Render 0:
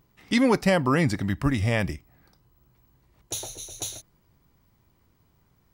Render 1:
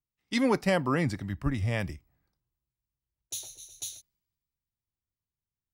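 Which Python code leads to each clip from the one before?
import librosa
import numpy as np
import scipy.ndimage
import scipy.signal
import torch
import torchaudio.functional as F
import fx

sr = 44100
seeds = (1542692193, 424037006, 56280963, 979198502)

y = fx.band_widen(x, sr, depth_pct=70)
y = F.gain(torch.from_numpy(y), -7.5).numpy()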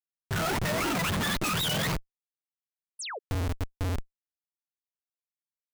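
y = fx.octave_mirror(x, sr, pivot_hz=590.0)
y = fx.schmitt(y, sr, flips_db=-44.0)
y = fx.spec_paint(y, sr, seeds[0], shape='fall', start_s=2.99, length_s=0.2, low_hz=370.0, high_hz=11000.0, level_db=-44.0)
y = F.gain(torch.from_numpy(y), 7.5).numpy()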